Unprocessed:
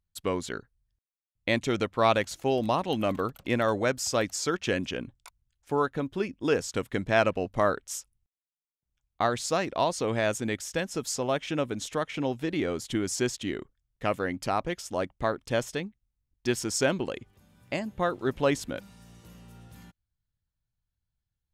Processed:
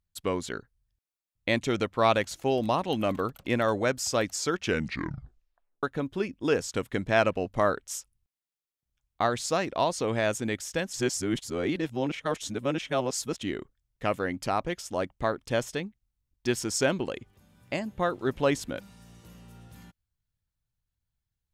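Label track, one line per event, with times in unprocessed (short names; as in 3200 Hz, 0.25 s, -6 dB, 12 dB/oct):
4.620000	4.620000	tape stop 1.21 s
10.930000	13.360000	reverse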